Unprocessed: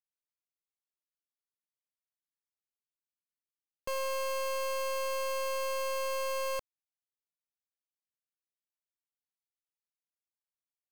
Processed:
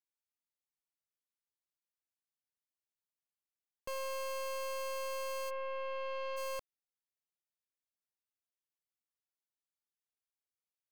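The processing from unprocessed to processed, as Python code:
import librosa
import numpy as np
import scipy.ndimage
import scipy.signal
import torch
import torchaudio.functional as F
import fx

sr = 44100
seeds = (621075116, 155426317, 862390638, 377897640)

y = fx.lowpass(x, sr, hz=fx.line((5.49, 2500.0), (6.36, 4100.0)), slope=24, at=(5.49, 6.36), fade=0.02)
y = F.gain(torch.from_numpy(y), -5.5).numpy()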